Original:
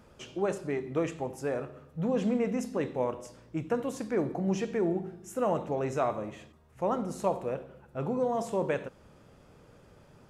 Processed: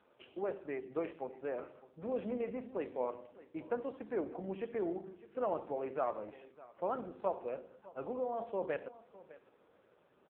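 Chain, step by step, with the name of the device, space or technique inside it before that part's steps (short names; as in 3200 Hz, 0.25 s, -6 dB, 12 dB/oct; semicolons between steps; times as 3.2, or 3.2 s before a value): satellite phone (BPF 310–3100 Hz; echo 0.605 s -19 dB; gain -5 dB; AMR-NB 5.9 kbps 8000 Hz)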